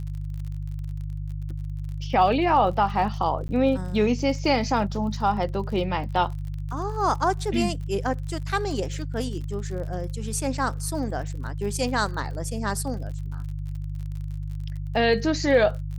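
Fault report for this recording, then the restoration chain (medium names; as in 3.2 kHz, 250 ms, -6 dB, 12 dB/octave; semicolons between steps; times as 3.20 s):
crackle 42 per s -35 dBFS
hum 50 Hz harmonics 3 -31 dBFS
3.48–3.49 s: dropout 10 ms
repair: de-click; de-hum 50 Hz, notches 3; interpolate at 3.48 s, 10 ms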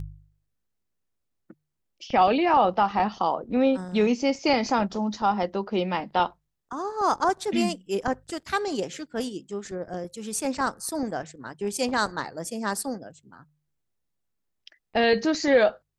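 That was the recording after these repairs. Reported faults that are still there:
nothing left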